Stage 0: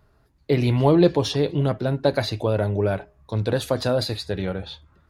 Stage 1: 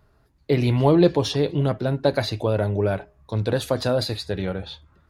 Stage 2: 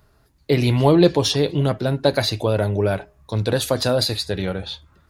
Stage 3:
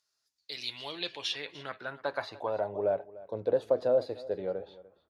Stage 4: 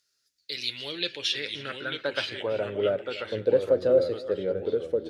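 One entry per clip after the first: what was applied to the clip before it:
no processing that can be heard
high-shelf EQ 3,500 Hz +8.5 dB; level +2 dB
band-pass filter sweep 5,900 Hz → 530 Hz, 0:00.27–0:03.04; single-tap delay 296 ms −19 dB; level −3.5 dB
delay with pitch and tempo change per echo 771 ms, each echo −2 semitones, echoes 2, each echo −6 dB; flat-topped bell 870 Hz −12 dB 1 octave; level +6 dB

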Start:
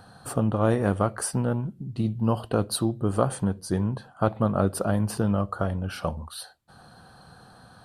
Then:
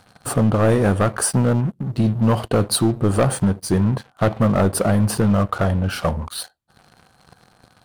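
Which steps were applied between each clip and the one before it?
leveller curve on the samples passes 3
level −1.5 dB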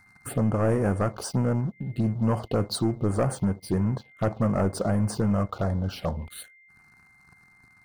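steady tone 2,100 Hz −45 dBFS
phaser swept by the level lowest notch 530 Hz, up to 3,800 Hz, full sweep at −13.5 dBFS
level −7 dB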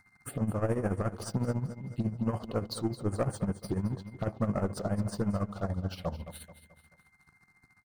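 amplitude tremolo 14 Hz, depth 74%
repeating echo 217 ms, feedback 43%, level −13 dB
level −3.5 dB

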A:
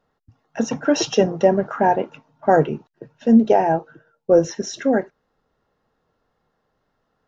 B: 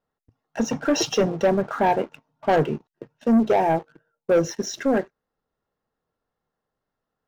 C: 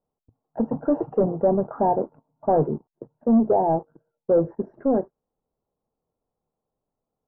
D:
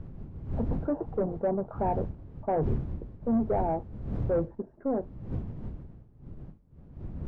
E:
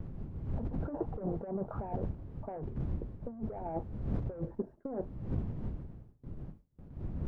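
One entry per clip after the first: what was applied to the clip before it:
leveller curve on the samples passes 2; level −8 dB
inverse Chebyshev low-pass filter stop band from 3,200 Hz, stop band 60 dB
wind on the microphone 130 Hz −28 dBFS; soft clipping −10 dBFS, distortion −23 dB; level −7.5 dB
compressor whose output falls as the input rises −31 dBFS, ratio −0.5; noise gate with hold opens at −38 dBFS; level −3 dB

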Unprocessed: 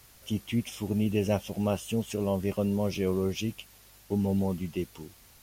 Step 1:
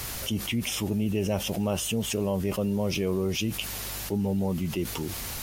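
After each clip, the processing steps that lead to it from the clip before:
envelope flattener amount 70%
level −2 dB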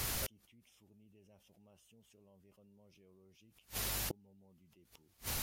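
gate with flip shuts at −23 dBFS, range −35 dB
level −3 dB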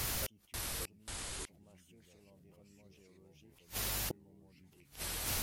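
delay with pitch and tempo change per echo 539 ms, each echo −3 semitones, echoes 2
level +1 dB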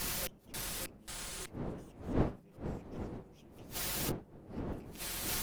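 lower of the sound and its delayed copy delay 5.6 ms
wind on the microphone 340 Hz −44 dBFS
level +1.5 dB

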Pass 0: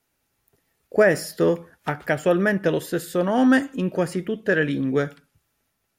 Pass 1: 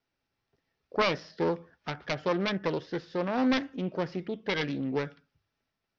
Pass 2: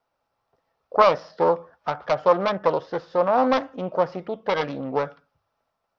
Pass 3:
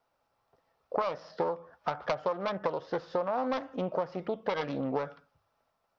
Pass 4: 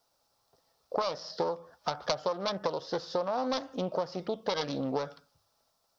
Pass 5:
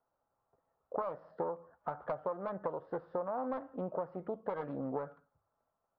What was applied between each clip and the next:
phase distortion by the signal itself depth 0.42 ms; Butterworth low-pass 5,800 Hz 72 dB per octave; mains-hum notches 50/100 Hz; level −8 dB
flat-topped bell 810 Hz +13 dB
downward compressor 12 to 1, threshold −27 dBFS, peak gain reduction 17 dB
high shelf with overshoot 3,300 Hz +11.5 dB, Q 1.5
low-pass filter 1,600 Hz 24 dB per octave; level −5.5 dB

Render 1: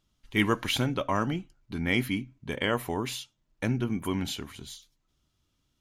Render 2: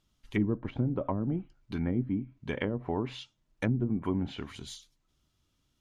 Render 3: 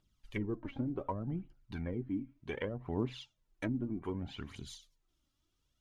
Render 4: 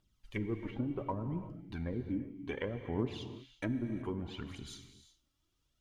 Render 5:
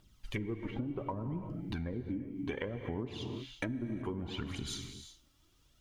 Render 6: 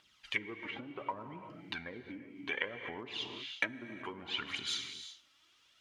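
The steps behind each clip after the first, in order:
treble cut that deepens with the level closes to 320 Hz, closed at −23 dBFS
phase shifter 0.66 Hz, delay 3.8 ms, feedback 55%; level −7 dB
reverb whose tail is shaped and stops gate 400 ms flat, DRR 9 dB
downward compressor 6 to 1, threshold −46 dBFS, peak gain reduction 16.5 dB; level +11 dB
resonant band-pass 2,400 Hz, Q 0.98; level +9.5 dB

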